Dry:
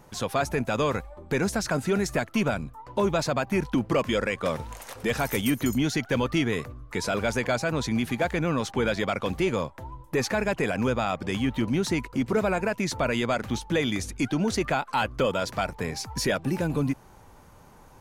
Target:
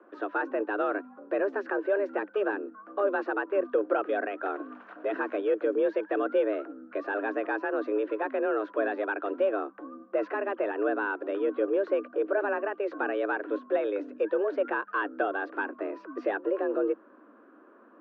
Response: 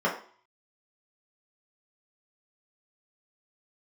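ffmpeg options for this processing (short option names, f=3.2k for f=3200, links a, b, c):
-af "afreqshift=200,highpass=f=260:w=0.5412,highpass=f=260:w=1.3066,equalizer=f=310:t=q:w=4:g=6,equalizer=f=540:t=q:w=4:g=7,equalizer=f=810:t=q:w=4:g=-6,equalizer=f=1.5k:t=q:w=4:g=8,equalizer=f=2.1k:t=q:w=4:g=-10,lowpass=f=2.2k:w=0.5412,lowpass=f=2.2k:w=1.3066,volume=-5dB"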